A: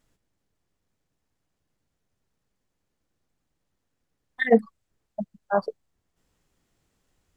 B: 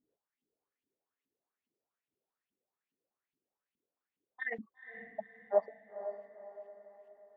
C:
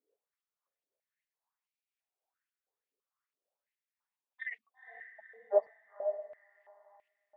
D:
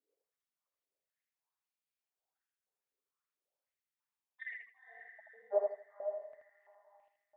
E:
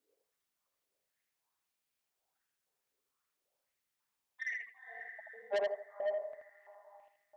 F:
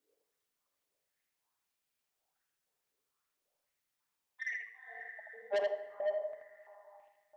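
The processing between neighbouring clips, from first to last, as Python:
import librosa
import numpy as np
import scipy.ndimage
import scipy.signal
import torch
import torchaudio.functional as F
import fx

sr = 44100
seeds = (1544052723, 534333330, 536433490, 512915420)

y1 = fx.filter_lfo_bandpass(x, sr, shape='saw_up', hz=2.4, low_hz=230.0, high_hz=3100.0, q=4.4)
y1 = fx.peak_eq(y1, sr, hz=410.0, db=5.0, octaves=0.31)
y1 = fx.echo_diffused(y1, sr, ms=481, feedback_pct=45, wet_db=-10)
y1 = F.gain(torch.from_numpy(y1), -1.5).numpy()
y2 = fx.filter_held_highpass(y1, sr, hz=3.0, low_hz=460.0, high_hz=2400.0)
y2 = F.gain(torch.from_numpy(y2), -5.0).numpy()
y3 = fx.echo_feedback(y2, sr, ms=80, feedback_pct=27, wet_db=-4.0)
y3 = F.gain(torch.from_numpy(y3), -5.0).numpy()
y4 = 10.0 ** (-36.0 / 20.0) * np.tanh(y3 / 10.0 ** (-36.0 / 20.0))
y4 = F.gain(torch.from_numpy(y4), 7.0).numpy()
y5 = fx.room_shoebox(y4, sr, seeds[0], volume_m3=830.0, walls='mixed', distance_m=0.4)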